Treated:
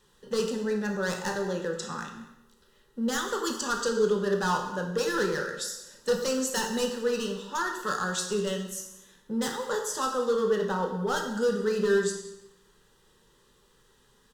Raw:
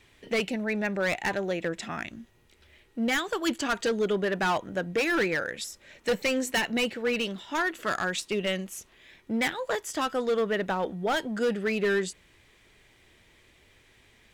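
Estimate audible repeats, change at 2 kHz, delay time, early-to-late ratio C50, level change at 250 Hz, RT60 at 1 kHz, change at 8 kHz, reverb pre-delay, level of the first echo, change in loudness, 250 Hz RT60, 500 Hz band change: 1, -4.5 dB, 190 ms, 6.0 dB, -1.0 dB, 0.90 s, +4.5 dB, 12 ms, -18.0 dB, -0.5 dB, 0.85 s, +1.0 dB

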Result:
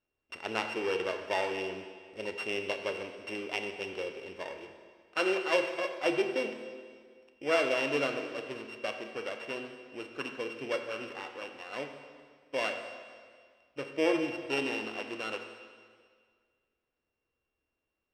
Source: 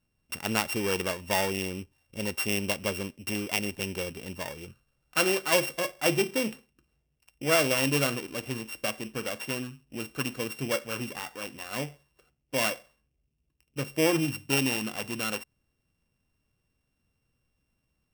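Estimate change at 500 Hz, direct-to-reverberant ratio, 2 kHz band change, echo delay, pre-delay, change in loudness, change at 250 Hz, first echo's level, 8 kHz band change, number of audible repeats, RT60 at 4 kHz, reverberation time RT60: -1.5 dB, 6.0 dB, -3.5 dB, no echo, 27 ms, -4.5 dB, -6.0 dB, no echo, -17.5 dB, no echo, 1.8 s, 1.9 s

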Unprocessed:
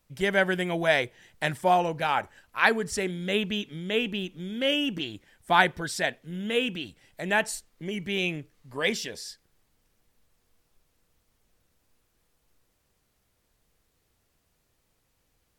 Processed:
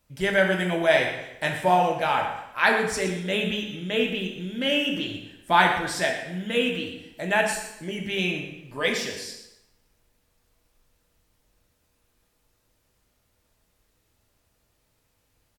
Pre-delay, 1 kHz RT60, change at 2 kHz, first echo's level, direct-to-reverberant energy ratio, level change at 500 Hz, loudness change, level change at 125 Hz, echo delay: 3 ms, 0.90 s, +2.5 dB, -12.0 dB, 0.5 dB, +3.0 dB, +2.5 dB, +2.5 dB, 119 ms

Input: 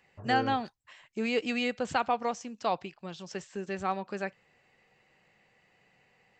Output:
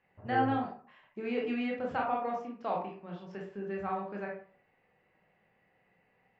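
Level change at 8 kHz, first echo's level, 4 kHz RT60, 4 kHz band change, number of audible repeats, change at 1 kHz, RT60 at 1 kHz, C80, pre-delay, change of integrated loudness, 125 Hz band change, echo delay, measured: under -25 dB, no echo, 0.25 s, -12.0 dB, no echo, -2.5 dB, 0.45 s, 10.0 dB, 20 ms, -2.5 dB, 0.0 dB, no echo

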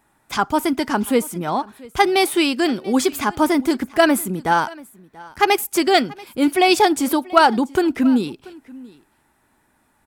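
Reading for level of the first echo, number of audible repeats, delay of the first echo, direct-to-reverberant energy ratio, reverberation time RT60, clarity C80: -22.0 dB, 1, 685 ms, no reverb, no reverb, no reverb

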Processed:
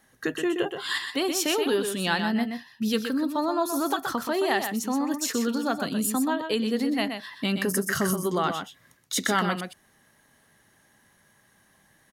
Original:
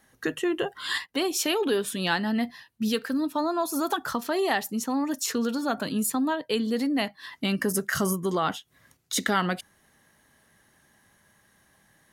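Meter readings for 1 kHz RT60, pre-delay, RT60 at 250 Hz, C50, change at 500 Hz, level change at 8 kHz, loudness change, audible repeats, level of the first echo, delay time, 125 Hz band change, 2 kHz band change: no reverb, no reverb, no reverb, no reverb, +1.0 dB, +1.0 dB, +0.5 dB, 1, -7.0 dB, 125 ms, +0.5 dB, +1.0 dB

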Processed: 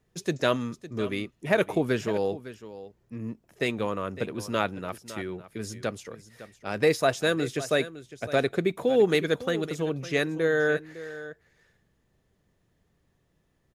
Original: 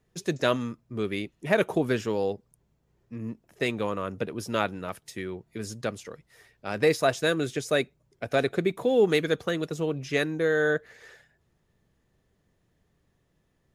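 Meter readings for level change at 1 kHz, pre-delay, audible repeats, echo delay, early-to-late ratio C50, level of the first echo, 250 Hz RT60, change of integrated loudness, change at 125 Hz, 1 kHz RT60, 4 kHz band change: 0.0 dB, no reverb, 1, 557 ms, no reverb, -15.0 dB, no reverb, 0.0 dB, 0.0 dB, no reverb, 0.0 dB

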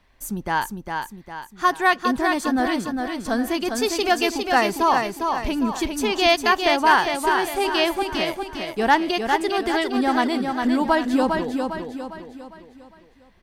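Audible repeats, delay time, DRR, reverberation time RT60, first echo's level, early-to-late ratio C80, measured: 5, 404 ms, no reverb, no reverb, -5.0 dB, no reverb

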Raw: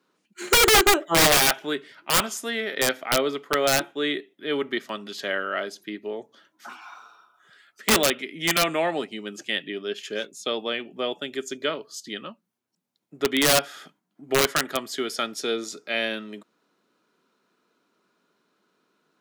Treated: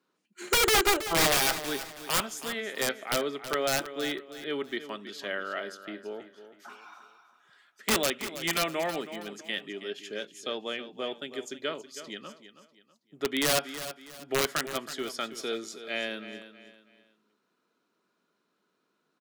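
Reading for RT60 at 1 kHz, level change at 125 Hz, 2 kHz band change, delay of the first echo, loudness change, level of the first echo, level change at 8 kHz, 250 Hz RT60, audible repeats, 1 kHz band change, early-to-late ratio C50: no reverb, -6.0 dB, -6.0 dB, 323 ms, -6.5 dB, -12.5 dB, -6.5 dB, no reverb, 3, -6.0 dB, no reverb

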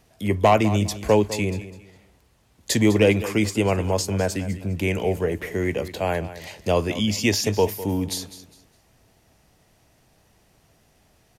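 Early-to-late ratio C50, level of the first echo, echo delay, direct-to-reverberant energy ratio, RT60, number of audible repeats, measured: no reverb, -14.5 dB, 203 ms, no reverb, no reverb, 2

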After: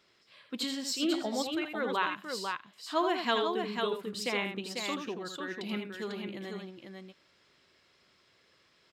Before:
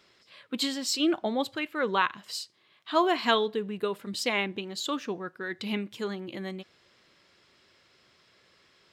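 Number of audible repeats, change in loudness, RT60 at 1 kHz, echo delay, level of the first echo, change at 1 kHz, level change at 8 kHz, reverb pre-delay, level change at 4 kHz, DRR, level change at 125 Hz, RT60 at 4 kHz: 2, -4.0 dB, no reverb, 81 ms, -6.5 dB, -3.5 dB, -3.5 dB, no reverb, -3.5 dB, no reverb, -4.0 dB, no reverb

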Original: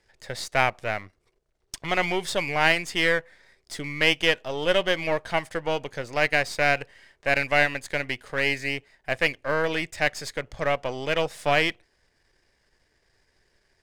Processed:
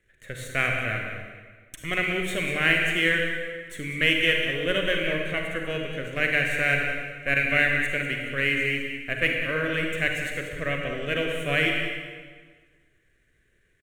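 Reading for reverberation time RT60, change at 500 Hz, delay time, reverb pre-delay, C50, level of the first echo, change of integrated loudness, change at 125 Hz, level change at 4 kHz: 1.5 s, -3.0 dB, 194 ms, 34 ms, 2.0 dB, -10.0 dB, 0.0 dB, +3.0 dB, -0.5 dB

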